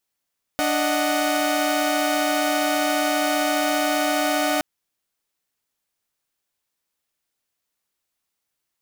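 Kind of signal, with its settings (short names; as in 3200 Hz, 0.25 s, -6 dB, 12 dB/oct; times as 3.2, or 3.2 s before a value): chord D4/D#5/F#5 saw, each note -21.5 dBFS 4.02 s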